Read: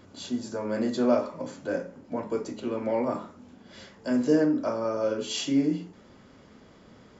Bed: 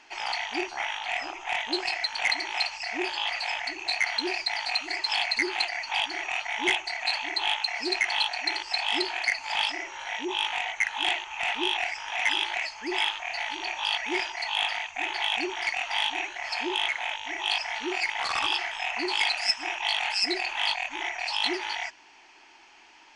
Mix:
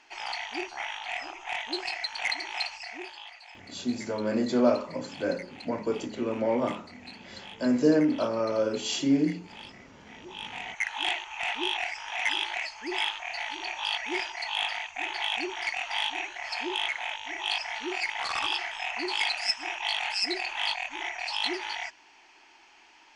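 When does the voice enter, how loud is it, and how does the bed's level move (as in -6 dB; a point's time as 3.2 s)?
3.55 s, +0.5 dB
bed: 2.73 s -4 dB
3.4 s -19 dB
10.01 s -19 dB
10.9 s -2.5 dB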